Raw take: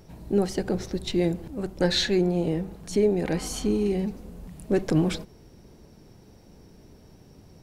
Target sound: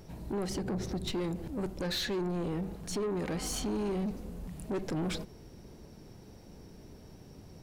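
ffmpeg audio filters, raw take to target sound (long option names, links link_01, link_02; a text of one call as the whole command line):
ffmpeg -i in.wav -filter_complex "[0:a]asettb=1/sr,asplit=3[link_01][link_02][link_03];[link_01]atrim=end=0.504[link_04];[link_02]atrim=start=0.5:end=1.12,asetpts=PTS-STARTPTS,afade=type=in:duration=0.004:curve=qsin,afade=type=out:start_time=0.616:duration=0.004:curve=qsin,equalizer=frequency=170:width=0.5:gain=7[link_05];[link_03]atrim=start=1.116[link_06];[link_04][link_05]acrossfade=duration=0.004:curve1=hsin:curve2=qsin[link_07];[link_07][link_06]acrossfade=duration=0.004:curve1=qsin:curve2=hsin,alimiter=limit=-19.5dB:level=0:latency=1:release=176,asoftclip=type=tanh:threshold=-29dB" out.wav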